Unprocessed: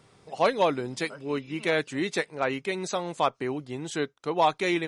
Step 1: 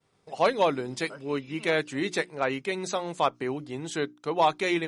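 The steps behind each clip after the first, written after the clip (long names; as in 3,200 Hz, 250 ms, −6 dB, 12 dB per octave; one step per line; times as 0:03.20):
mains-hum notches 60/120/180/240/300/360 Hz
downward expander −50 dBFS
reversed playback
upward compression, threshold −40 dBFS
reversed playback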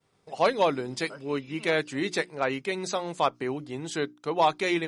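dynamic equaliser 4,800 Hz, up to +5 dB, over −58 dBFS, Q 6.7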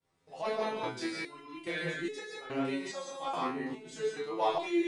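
reverb whose tail is shaped and stops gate 200 ms rising, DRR 0 dB
multi-voice chorus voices 4, 1 Hz, delay 29 ms, depth 3.9 ms
step-sequenced resonator 2.4 Hz 87–430 Hz
level +4.5 dB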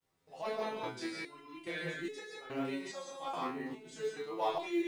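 log-companded quantiser 8 bits
level −4 dB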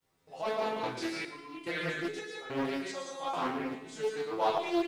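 repeating echo 115 ms, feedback 43%, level −11.5 dB
highs frequency-modulated by the lows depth 0.44 ms
level +4.5 dB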